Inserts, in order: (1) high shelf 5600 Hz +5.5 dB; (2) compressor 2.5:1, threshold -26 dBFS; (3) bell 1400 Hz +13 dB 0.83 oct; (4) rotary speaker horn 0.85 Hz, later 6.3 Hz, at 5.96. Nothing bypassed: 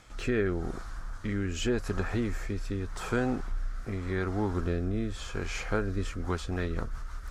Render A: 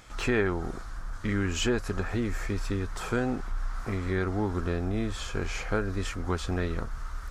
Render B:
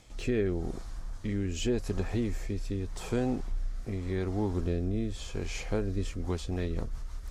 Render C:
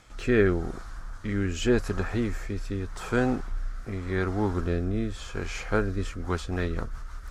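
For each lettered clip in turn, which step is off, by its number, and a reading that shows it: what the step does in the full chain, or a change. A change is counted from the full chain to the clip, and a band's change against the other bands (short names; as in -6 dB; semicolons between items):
4, 4 kHz band +2.0 dB; 3, 2 kHz band -6.5 dB; 2, mean gain reduction 1.5 dB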